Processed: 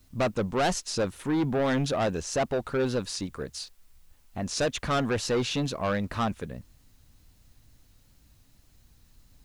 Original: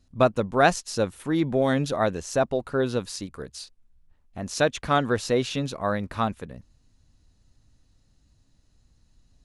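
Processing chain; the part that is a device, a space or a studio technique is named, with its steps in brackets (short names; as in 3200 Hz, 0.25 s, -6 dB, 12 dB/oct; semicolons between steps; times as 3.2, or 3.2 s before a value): compact cassette (soft clip -24 dBFS, distortion -7 dB; LPF 9300 Hz; wow and flutter; white noise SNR 38 dB); gain +2.5 dB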